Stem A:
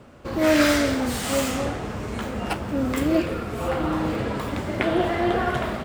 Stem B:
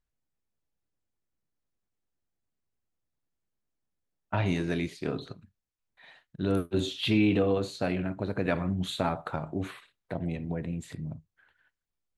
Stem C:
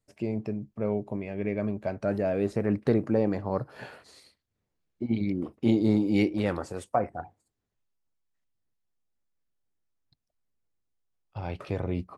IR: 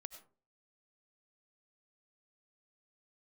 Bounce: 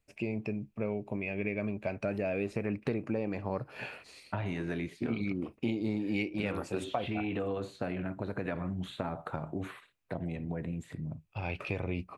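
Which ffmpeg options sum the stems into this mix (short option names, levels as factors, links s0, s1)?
-filter_complex "[1:a]equalizer=f=4600:t=o:w=1.2:g=-5.5,acrossover=split=630|3200[s0][s1][s2];[s0]acompressor=threshold=0.0282:ratio=4[s3];[s1]acompressor=threshold=0.0158:ratio=4[s4];[s2]acompressor=threshold=0.00126:ratio=4[s5];[s3][s4][s5]amix=inputs=3:normalize=0,volume=0.891[s6];[2:a]equalizer=f=2500:w=3.4:g=14.5,volume=0.841[s7];[s6][s7]amix=inputs=2:normalize=0,acompressor=threshold=0.0355:ratio=5"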